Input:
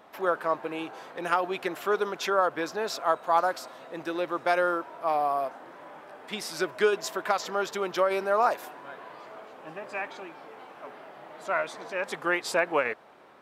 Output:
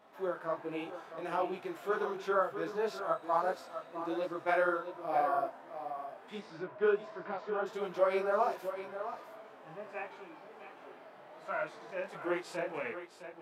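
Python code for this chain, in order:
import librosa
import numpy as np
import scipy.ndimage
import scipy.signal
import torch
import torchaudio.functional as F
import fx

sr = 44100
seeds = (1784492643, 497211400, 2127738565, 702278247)

y = fx.bessel_lowpass(x, sr, hz=1800.0, order=2, at=(6.39, 7.66))
y = fx.hpss(y, sr, part='percussive', gain_db=-16)
y = y + 10.0 ** (-10.5 / 20.0) * np.pad(y, (int(659 * sr / 1000.0), 0))[:len(y)]
y = fx.detune_double(y, sr, cents=48)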